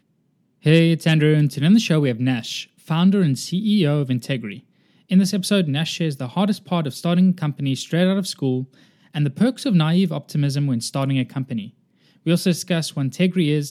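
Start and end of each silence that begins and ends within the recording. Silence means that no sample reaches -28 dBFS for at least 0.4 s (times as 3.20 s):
4.54–5.11 s
8.64–9.15 s
11.67–12.26 s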